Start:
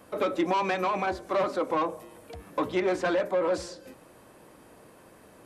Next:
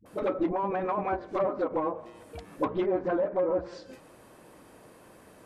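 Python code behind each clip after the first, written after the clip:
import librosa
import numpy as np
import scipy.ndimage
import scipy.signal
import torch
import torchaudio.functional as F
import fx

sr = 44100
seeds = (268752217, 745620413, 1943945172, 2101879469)

y = np.minimum(x, 2.0 * 10.0 ** (-20.5 / 20.0) - x)
y = fx.env_lowpass_down(y, sr, base_hz=830.0, full_db=-23.0)
y = fx.dispersion(y, sr, late='highs', ms=59.0, hz=420.0)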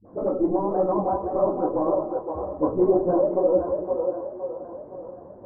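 y = scipy.signal.sosfilt(scipy.signal.cheby2(4, 70, 4000.0, 'lowpass', fs=sr, output='sos'), x)
y = fx.echo_split(y, sr, split_hz=370.0, low_ms=102, high_ms=516, feedback_pct=52, wet_db=-4.5)
y = fx.detune_double(y, sr, cents=35)
y = y * librosa.db_to_amplitude(9.0)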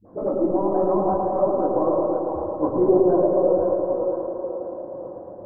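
y = fx.echo_wet_lowpass(x, sr, ms=111, feedback_pct=70, hz=1500.0, wet_db=-4.0)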